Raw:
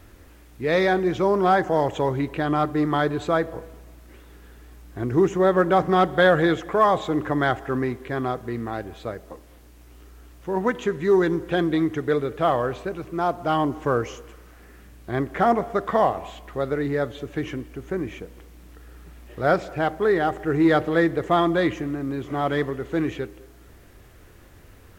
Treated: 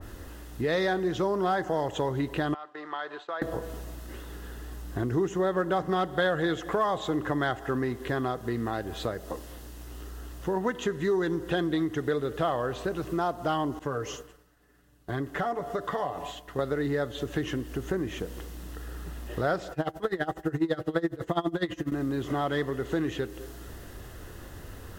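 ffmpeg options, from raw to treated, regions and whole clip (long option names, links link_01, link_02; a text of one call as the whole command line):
ffmpeg -i in.wav -filter_complex "[0:a]asettb=1/sr,asplit=3[link_01][link_02][link_03];[link_01]atrim=end=2.544[link_04];[link_02]atrim=start=2.54:end=3.42,asetpts=PTS-STARTPTS,afade=type=in:duration=0.004:curve=qsin,afade=type=out:start_time=0.876:duration=0.004:curve=qsin,agate=range=-33dB:threshold=-24dB:ratio=3:release=100:detection=peak,acompressor=threshold=-30dB:ratio=10:attack=3.2:release=140:knee=1:detection=peak,highpass=760,lowpass=3300[link_05];[link_03]atrim=start=3.416[link_06];[link_04][link_05]acrossfade=duration=0.004:curve1=hsin:curve2=qsin[link_07];[link_07][link_06]acrossfade=duration=0.004:curve1=qsin:curve2=hsin,asettb=1/sr,asplit=3[link_08][link_09][link_10];[link_08]atrim=end=13.794[link_11];[link_09]atrim=start=13.79:end=16.59,asetpts=PTS-STARTPTS,afade=type=in:duration=0.004:curve=qsin,afade=type=out:start_time=2.796:duration=0.004:curve=qsin,agate=range=-33dB:threshold=-35dB:ratio=3:release=100:detection=peak,aecho=1:1:6.9:0.56,atrim=end_sample=123480,acompressor=threshold=-46dB:ratio=1.5:attack=3.2:release=140:knee=1:detection=peak[link_12];[link_10]atrim=start=16.586[link_13];[link_11][link_12]acrossfade=duration=0.004:curve1=hsin:curve2=qsin[link_14];[link_14][link_13]acrossfade=duration=0.004:curve1=qsin:curve2=hsin,asettb=1/sr,asplit=3[link_15][link_16][link_17];[link_15]atrim=end=19.724[link_18];[link_16]atrim=start=19.72:end=21.92,asetpts=PTS-STARTPTS,afade=type=in:duration=0.004:curve=qsin,afade=type=out:start_time=2.196:duration=0.004:curve=qsin,aecho=1:1:6.1:0.68,atrim=end_sample=97020,aeval=exprs='val(0)*pow(10,-22*(0.5-0.5*cos(2*PI*12*n/s))/20)':channel_layout=same[link_19];[link_17]atrim=start=21.916[link_20];[link_18][link_19]acrossfade=duration=0.004:curve1=hsin:curve2=qsin[link_21];[link_21][link_20]acrossfade=duration=0.004:curve1=qsin:curve2=hsin,bandreject=frequency=2300:width=5.1,acompressor=threshold=-35dB:ratio=3,adynamicequalizer=threshold=0.00282:dfrequency=1900:dqfactor=0.7:tfrequency=1900:tqfactor=0.7:attack=5:release=100:ratio=0.375:range=2:mode=boostabove:tftype=highshelf,volume=6dB" out.wav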